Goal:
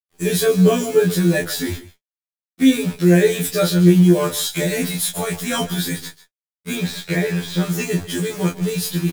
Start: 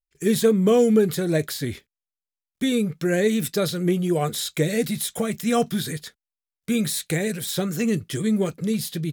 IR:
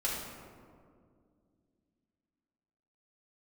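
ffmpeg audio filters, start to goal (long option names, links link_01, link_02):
-filter_complex "[0:a]asettb=1/sr,asplit=3[link_01][link_02][link_03];[link_01]atrim=end=6.754[link_04];[link_02]atrim=start=6.75:end=7.63,asetpts=PTS-STARTPTS,afade=type=in:duration=0.004:curve=qsin,afade=type=out:start_time=0.876:duration=0.004:curve=qsin,lowpass=3400[link_05];[link_03]atrim=start=7.626[link_06];[link_04][link_05]acrossfade=duration=0.004:curve1=hsin:curve2=qsin[link_07];[link_07][link_06]acrossfade=duration=0.004:curve1=qsin:curve2=hsin,acrusher=bits=7:dc=4:mix=0:aa=0.000001,asplit=2[link_08][link_09];[link_09]adelay=22,volume=-5dB[link_10];[link_08][link_10]amix=inputs=2:normalize=0,asplit=2[link_11][link_12];[link_12]aecho=0:1:144:0.15[link_13];[link_11][link_13]amix=inputs=2:normalize=0,afftfilt=real='re*2*eq(mod(b,4),0)':imag='im*2*eq(mod(b,4),0)':win_size=2048:overlap=0.75,volume=7dB"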